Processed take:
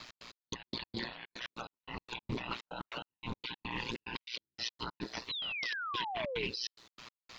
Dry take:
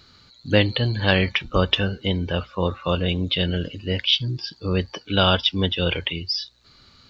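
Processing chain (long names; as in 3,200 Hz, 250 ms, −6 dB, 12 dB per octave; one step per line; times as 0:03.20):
frequency inversion band by band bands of 500 Hz
gate on every frequency bin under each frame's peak −10 dB weak
high-pass filter 68 Hz 6 dB per octave
compressor whose output falls as the input rises −40 dBFS, ratio −1
brickwall limiter −28 dBFS, peak gain reduction 9.5 dB
gate pattern "x.x..x.x.xxx." 150 BPM −60 dB
ring modulation 62 Hz
wrong playback speed 25 fps video run at 24 fps
sound drawn into the spectrogram fall, 0:05.29–0:06.47, 380–4,200 Hz −42 dBFS
highs frequency-modulated by the lows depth 0.24 ms
level +3.5 dB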